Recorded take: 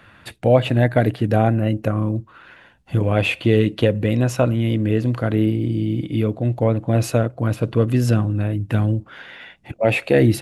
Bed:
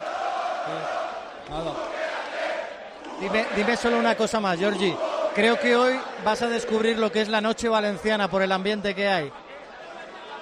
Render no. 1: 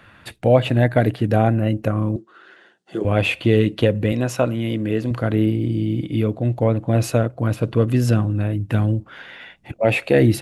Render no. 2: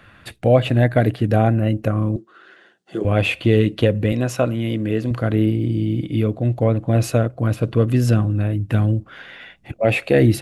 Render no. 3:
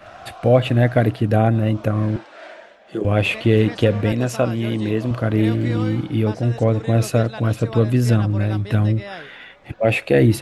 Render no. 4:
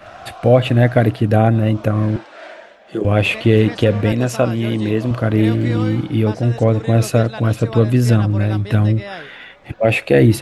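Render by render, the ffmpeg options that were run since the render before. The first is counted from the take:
ffmpeg -i in.wav -filter_complex "[0:a]asettb=1/sr,asplit=3[link_01][link_02][link_03];[link_01]atrim=end=2.164[link_04];[link_02]atrim=start=2.16:end=3.05,asetpts=PTS-STARTPTS,afade=type=in:duration=0.004:curve=qsin,afade=type=out:start_time=0.886:duration=0.004:curve=qsin,highpass=frequency=220:width=0.5412,highpass=frequency=220:width=1.3066,equalizer=frequency=260:width_type=q:width=4:gain=-10,equalizer=frequency=370:width_type=q:width=4:gain=9,equalizer=frequency=550:width_type=q:width=4:gain=-4,equalizer=frequency=960:width_type=q:width=4:gain=-9,equalizer=frequency=2400:width_type=q:width=4:gain=-10,lowpass=frequency=9200:width=0.5412,lowpass=frequency=9200:width=1.3066[link_05];[link_03]atrim=start=3.046[link_06];[link_04][link_05]acrossfade=duration=0.004:curve1=hsin:curve2=qsin[link_07];[link_07][link_06]acrossfade=duration=0.004:curve1=qsin:curve2=hsin,asettb=1/sr,asplit=3[link_08][link_09][link_10];[link_08]atrim=end=4.124[link_11];[link_09]atrim=start=4.12:end=5.11,asetpts=PTS-STARTPTS,afade=type=in:duration=0.004:curve=qsin,afade=type=out:start_time=0.986:duration=0.004:curve=qsin,highpass=frequency=190:poles=1[link_12];[link_10]atrim=start=5.106[link_13];[link_11][link_12]acrossfade=duration=0.004:curve1=hsin:curve2=qsin[link_14];[link_14][link_13]acrossfade=duration=0.004:curve1=qsin:curve2=hsin" out.wav
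ffmpeg -i in.wav -af "lowshelf=frequency=62:gain=6,bandreject=frequency=910:width=11" out.wav
ffmpeg -i in.wav -i bed.wav -filter_complex "[1:a]volume=-11.5dB[link_01];[0:a][link_01]amix=inputs=2:normalize=0" out.wav
ffmpeg -i in.wav -af "volume=3dB,alimiter=limit=-1dB:level=0:latency=1" out.wav

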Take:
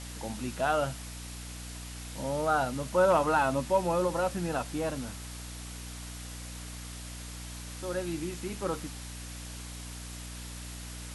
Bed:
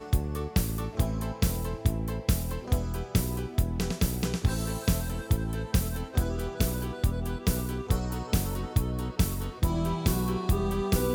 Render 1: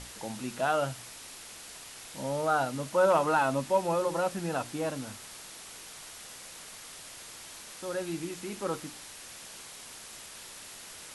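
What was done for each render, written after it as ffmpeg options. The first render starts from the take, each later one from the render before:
ffmpeg -i in.wav -af "bandreject=frequency=60:width_type=h:width=6,bandreject=frequency=120:width_type=h:width=6,bandreject=frequency=180:width_type=h:width=6,bandreject=frequency=240:width_type=h:width=6,bandreject=frequency=300:width_type=h:width=6,bandreject=frequency=360:width_type=h:width=6" out.wav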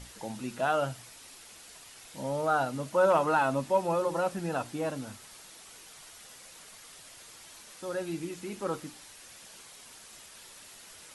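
ffmpeg -i in.wav -af "afftdn=noise_reduction=6:noise_floor=-47" out.wav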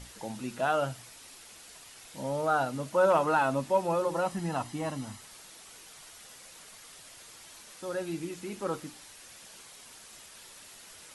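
ffmpeg -i in.wav -filter_complex "[0:a]asettb=1/sr,asplit=3[link_01][link_02][link_03];[link_01]atrim=end=4.254[link_04];[link_02]atrim=start=4.25:end=5.21,asetpts=PTS-STARTPTS,afade=type=in:duration=0.004:curve=qsin,afade=type=out:start_time=0.956:duration=0.004:curve=qsin,aecho=1:1:1:0.52,atrim=end_sample=42336[link_05];[link_03]atrim=start=5.206[link_06];[link_04][link_05]acrossfade=duration=0.004:curve1=hsin:curve2=qsin[link_07];[link_07][link_06]acrossfade=duration=0.004:curve1=qsin:curve2=hsin" out.wav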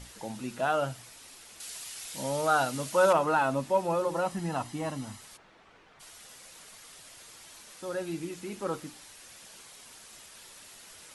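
ffmpeg -i in.wav -filter_complex "[0:a]asettb=1/sr,asplit=3[link_01][link_02][link_03];[link_01]atrim=end=1.604[link_04];[link_02]atrim=start=1.6:end=3.13,asetpts=PTS-STARTPTS,afade=type=in:duration=0.004:curve=qsin,afade=type=out:start_time=1.526:duration=0.004:curve=qsin,highshelf=frequency=2100:gain=10.5[link_05];[link_03]atrim=start=3.126[link_06];[link_04][link_05]acrossfade=duration=0.004:curve1=hsin:curve2=qsin[link_07];[link_07][link_06]acrossfade=duration=0.004:curve1=qsin:curve2=hsin,asplit=3[link_08][link_09][link_10];[link_08]afade=type=out:start_time=5.36:duration=0.02[link_11];[link_09]lowpass=1900,afade=type=in:start_time=5.36:duration=0.02,afade=type=out:start_time=5.99:duration=0.02[link_12];[link_10]afade=type=in:start_time=5.99:duration=0.02[link_13];[link_11][link_12][link_13]amix=inputs=3:normalize=0" out.wav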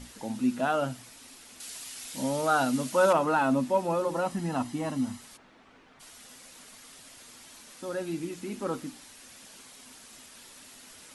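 ffmpeg -i in.wav -af "equalizer=frequency=250:width_type=o:width=0.31:gain=13.5" out.wav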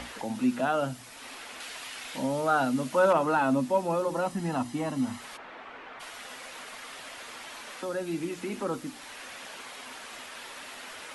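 ffmpeg -i in.wav -filter_complex "[0:a]acrossover=split=170|420|3200[link_01][link_02][link_03][link_04];[link_03]acompressor=mode=upward:threshold=-31dB:ratio=2.5[link_05];[link_04]alimiter=level_in=15.5dB:limit=-24dB:level=0:latency=1:release=96,volume=-15.5dB[link_06];[link_01][link_02][link_05][link_06]amix=inputs=4:normalize=0" out.wav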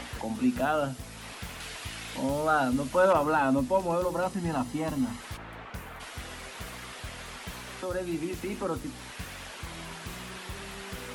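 ffmpeg -i in.wav -i bed.wav -filter_complex "[1:a]volume=-16.5dB[link_01];[0:a][link_01]amix=inputs=2:normalize=0" out.wav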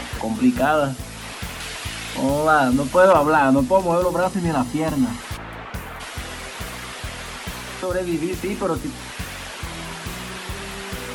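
ffmpeg -i in.wav -af "volume=9dB" out.wav

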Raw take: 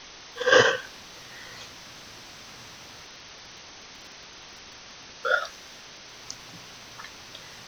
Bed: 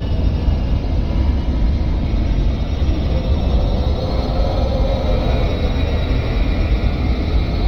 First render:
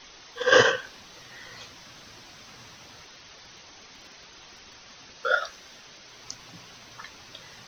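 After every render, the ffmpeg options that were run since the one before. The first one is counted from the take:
ffmpeg -i in.wav -af "afftdn=noise_reduction=6:noise_floor=-46" out.wav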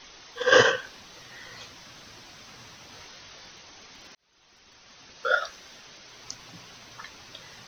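ffmpeg -i in.wav -filter_complex "[0:a]asettb=1/sr,asplit=3[link_01][link_02][link_03];[link_01]atrim=end=2.904[link_04];[link_02]atrim=start=2.9:end=3.51,asetpts=PTS-STARTPTS,afade=type=in:duration=0.004:curve=qsin,afade=type=out:start_time=0.606:duration=0.004:curve=qsin,asplit=2[link_05][link_06];[link_06]adelay=21,volume=-3.5dB[link_07];[link_05][link_07]amix=inputs=2:normalize=0,atrim=end_sample=26901[link_08];[link_03]atrim=start=3.506[link_09];[link_04][link_08]acrossfade=duration=0.004:curve1=hsin:curve2=qsin[link_10];[link_10][link_09]acrossfade=duration=0.004:curve1=qsin:curve2=hsin,asplit=2[link_11][link_12];[link_11]atrim=end=4.15,asetpts=PTS-STARTPTS,afade=type=out:start_time=4.146:duration=0.004:curve=hsin[link_13];[link_12]atrim=start=4.15,asetpts=PTS-STARTPTS,afade=type=in:duration=1.16[link_14];[link_13][link_14]concat=n=2:v=0:a=1" out.wav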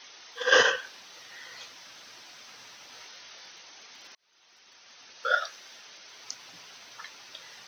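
ffmpeg -i in.wav -af "highpass=frequency=750:poles=1,bandreject=frequency=1100:width=21" out.wav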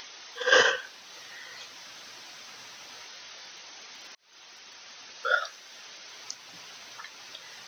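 ffmpeg -i in.wav -af "acompressor=mode=upward:threshold=-40dB:ratio=2.5" out.wav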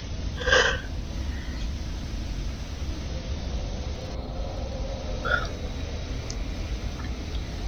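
ffmpeg -i in.wav -i bed.wav -filter_complex "[1:a]volume=-15dB[link_01];[0:a][link_01]amix=inputs=2:normalize=0" out.wav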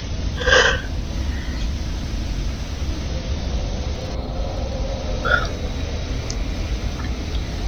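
ffmpeg -i in.wav -af "volume=7dB,alimiter=limit=-2dB:level=0:latency=1" out.wav

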